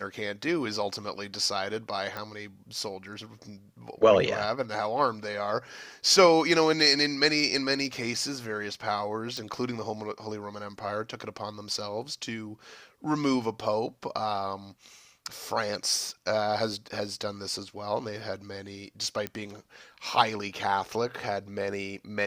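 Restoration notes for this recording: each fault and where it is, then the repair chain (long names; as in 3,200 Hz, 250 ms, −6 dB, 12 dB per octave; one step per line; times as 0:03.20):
0:02.17: click −21 dBFS
0:09.37: click
0:19.27: click −16 dBFS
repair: click removal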